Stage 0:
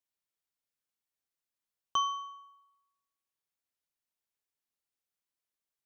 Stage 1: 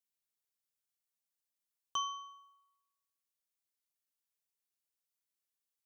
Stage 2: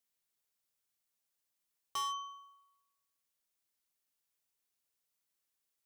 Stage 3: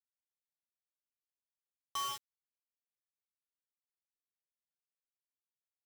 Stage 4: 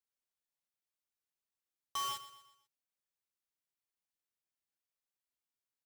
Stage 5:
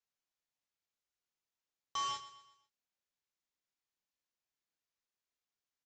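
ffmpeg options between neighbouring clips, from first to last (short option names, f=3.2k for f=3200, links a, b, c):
-af "highshelf=f=3.5k:g=10,volume=-8dB"
-af "asoftclip=type=hard:threshold=-38dB,volume=4.5dB"
-af "acrusher=bits=5:mix=0:aa=0.000001,volume=-4dB"
-af "aecho=1:1:124|248|372|496:0.178|0.0782|0.0344|0.0151"
-filter_complex "[0:a]asplit=2[a][b];[b]adelay=27,volume=-7dB[c];[a][c]amix=inputs=2:normalize=0,aresample=16000,aresample=44100"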